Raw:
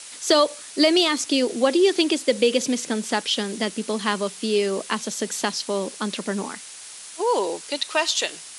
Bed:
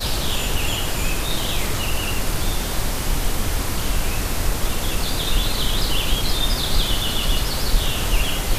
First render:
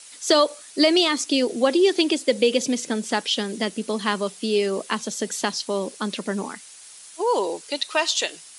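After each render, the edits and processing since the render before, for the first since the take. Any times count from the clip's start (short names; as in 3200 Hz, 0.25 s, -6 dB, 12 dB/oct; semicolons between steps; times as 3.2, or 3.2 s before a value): denoiser 7 dB, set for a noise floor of -40 dBFS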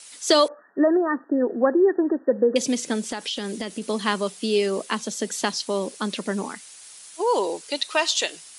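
0.48–2.56 brick-wall FIR band-pass 160–1900 Hz; 3.09–3.82 compressor 10:1, threshold -24 dBFS; 4.85–5.38 Chebyshev high-pass 170 Hz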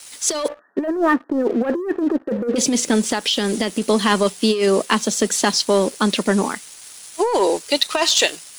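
sample leveller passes 2; negative-ratio compressor -16 dBFS, ratio -0.5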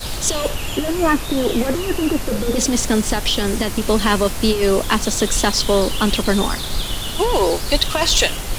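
add bed -3.5 dB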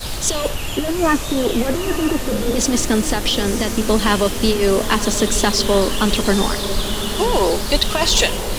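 diffused feedback echo 0.95 s, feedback 63%, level -10.5 dB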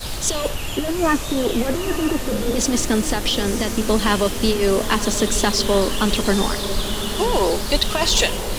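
gain -2 dB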